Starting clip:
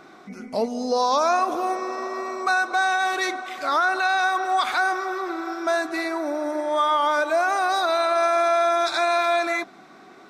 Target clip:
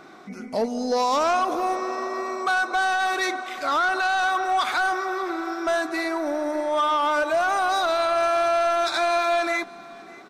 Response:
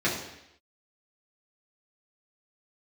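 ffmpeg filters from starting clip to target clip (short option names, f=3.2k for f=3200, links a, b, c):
-filter_complex "[0:a]asplit=2[a][b];[b]aeval=exprs='0.282*sin(PI/2*2*val(0)/0.282)':c=same,volume=-8dB[c];[a][c]amix=inputs=2:normalize=0,aecho=1:1:595:0.0841,volume=-6dB"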